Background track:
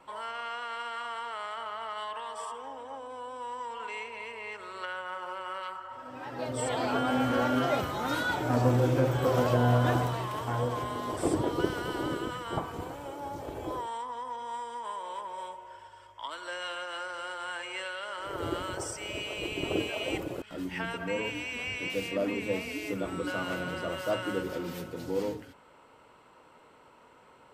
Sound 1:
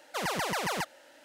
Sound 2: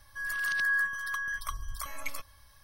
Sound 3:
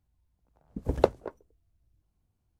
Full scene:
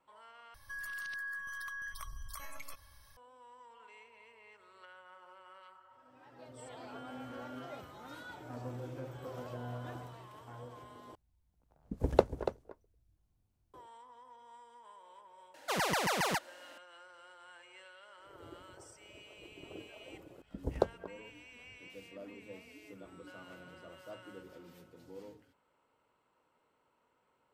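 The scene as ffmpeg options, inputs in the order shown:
-filter_complex "[3:a]asplit=2[s0][s1];[0:a]volume=0.119[s2];[2:a]acompressor=threshold=0.0126:ratio=6:attack=3.2:release=140:knee=1:detection=peak[s3];[s0]aecho=1:1:286:0.316[s4];[s1]asuperstop=centerf=2300:order=4:qfactor=1.2[s5];[s2]asplit=3[s6][s7][s8];[s6]atrim=end=0.544[s9];[s3]atrim=end=2.63,asetpts=PTS-STARTPTS,volume=0.794[s10];[s7]atrim=start=3.166:end=11.154[s11];[s4]atrim=end=2.59,asetpts=PTS-STARTPTS,volume=0.708[s12];[s8]atrim=start=13.736[s13];[1:a]atrim=end=1.24,asetpts=PTS-STARTPTS,volume=0.944,afade=t=in:d=0.004:c=hsin,afade=t=out:st=1.236:d=0.004:c=hsin,adelay=15540[s14];[s5]atrim=end=2.59,asetpts=PTS-STARTPTS,volume=0.398,afade=t=in:d=0.004:c=hsin,afade=t=out:st=2.586:d=0.004:c=hsin,adelay=19780[s15];[s9][s10]acrossfade=d=0.004:c1=hsin:c2=hsin[s16];[s16][s11]acrossfade=d=0.004:c1=hsin:c2=hsin[s17];[s17][s12]acrossfade=d=0.004:c1=hsin:c2=hsin[s18];[s18][s13]acrossfade=d=0.004:c1=hsin:c2=hsin[s19];[s19][s14][s15]amix=inputs=3:normalize=0"

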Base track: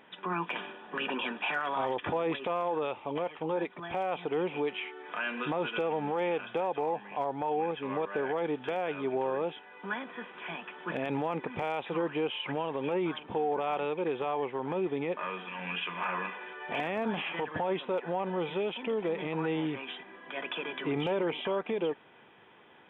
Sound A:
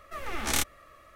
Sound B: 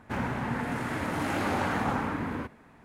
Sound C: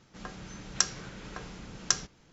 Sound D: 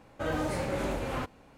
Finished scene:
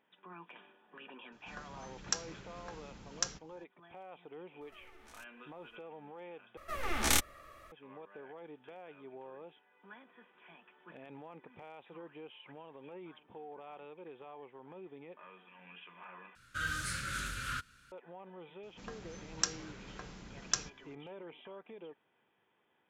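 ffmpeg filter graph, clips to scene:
-filter_complex "[3:a]asplit=2[s0][s1];[1:a]asplit=2[s2][s3];[0:a]volume=0.119[s4];[s2]acompressor=threshold=0.00631:ratio=4:attack=2.3:release=705:knee=1:detection=peak[s5];[4:a]firequalizer=gain_entry='entry(120,0);entry(200,-6);entry(300,-13);entry(440,-15);entry(790,-27);entry(1400,15);entry(2000,2);entry(3400,10);entry(9900,13);entry(15000,4)':delay=0.05:min_phase=1[s6];[s4]asplit=3[s7][s8][s9];[s7]atrim=end=6.574[s10];[s3]atrim=end=1.15,asetpts=PTS-STARTPTS,volume=0.891[s11];[s8]atrim=start=7.716:end=16.354[s12];[s6]atrim=end=1.57,asetpts=PTS-STARTPTS,volume=0.447[s13];[s9]atrim=start=17.916[s14];[s0]atrim=end=2.32,asetpts=PTS-STARTPTS,volume=0.398,afade=t=in:d=0.004:c=hsin,afade=t=out:st=2.316:d=0.004:c=hsin,adelay=1320[s15];[s5]atrim=end=1.15,asetpts=PTS-STARTPTS,volume=0.251,afade=t=in:d=0.004:c=hsin,afade=t=out:st=1.146:d=0.004:c=hsin,adelay=203301S[s16];[s1]atrim=end=2.32,asetpts=PTS-STARTPTS,volume=0.501,afade=t=in:d=0.004:c=hsin,afade=t=out:st=2.316:d=0.004:c=hsin,adelay=18630[s17];[s10][s11]acrossfade=d=0.004:c1=hsin:c2=hsin[s18];[s18][s12]acrossfade=d=0.004:c1=hsin:c2=hsin[s19];[s19][s13]acrossfade=d=0.004:c1=hsin:c2=hsin[s20];[s20][s14]acrossfade=d=0.004:c1=hsin:c2=hsin[s21];[s21][s15][s16][s17]amix=inputs=4:normalize=0"

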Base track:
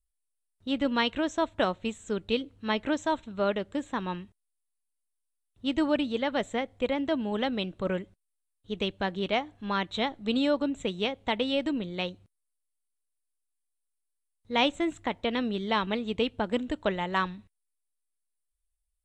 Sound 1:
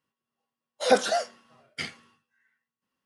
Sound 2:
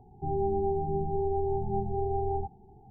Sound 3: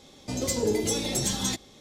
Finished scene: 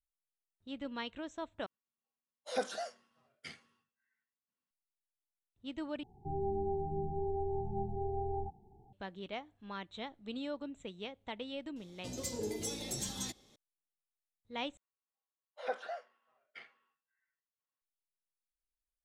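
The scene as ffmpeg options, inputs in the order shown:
-filter_complex "[1:a]asplit=2[s0][s1];[0:a]volume=0.188[s2];[3:a]highshelf=f=5300:g=3.5[s3];[s1]acrossover=split=430 3000:gain=0.0891 1 0.0708[s4][s5][s6];[s4][s5][s6]amix=inputs=3:normalize=0[s7];[s2]asplit=4[s8][s9][s10][s11];[s8]atrim=end=1.664[s12];[s0]atrim=end=3.05,asetpts=PTS-STARTPTS,volume=0.188[s13];[s9]atrim=start=4.706:end=6.034[s14];[2:a]atrim=end=2.9,asetpts=PTS-STARTPTS,volume=0.447[s15];[s10]atrim=start=8.926:end=14.774[s16];[s7]atrim=end=3.05,asetpts=PTS-STARTPTS,volume=0.188[s17];[s11]atrim=start=17.816[s18];[s3]atrim=end=1.8,asetpts=PTS-STARTPTS,volume=0.224,afade=t=in:d=0.004:c=hsin,afade=t=out:st=1.796:d=0.004:c=hsin,adelay=11760[s19];[s12][s13]acrossfade=d=0.004:c1=hsin:c2=hsin[s20];[s20][s14]acrossfade=d=0.004:c1=hsin:c2=hsin[s21];[s21][s15]acrossfade=d=0.004:c1=hsin:c2=hsin[s22];[s22][s16]acrossfade=d=0.004:c1=hsin:c2=hsin[s23];[s23][s17]acrossfade=d=0.004:c1=hsin:c2=hsin[s24];[s24][s18]acrossfade=d=0.004:c1=hsin:c2=hsin[s25];[s25][s19]amix=inputs=2:normalize=0"

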